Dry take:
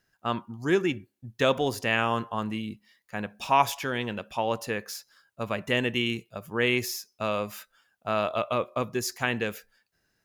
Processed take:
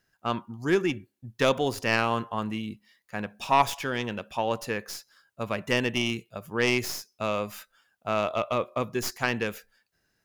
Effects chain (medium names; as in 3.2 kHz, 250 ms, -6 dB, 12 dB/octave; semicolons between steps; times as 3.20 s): tracing distortion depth 0.063 ms